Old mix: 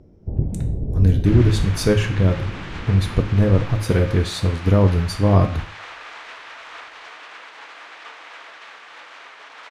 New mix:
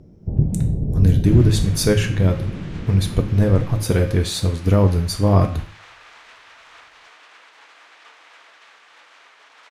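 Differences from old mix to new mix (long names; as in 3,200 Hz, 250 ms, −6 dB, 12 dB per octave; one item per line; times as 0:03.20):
first sound: add parametric band 160 Hz +7.5 dB 1 octave
second sound −9.0 dB
master: add high-shelf EQ 5,800 Hz +9.5 dB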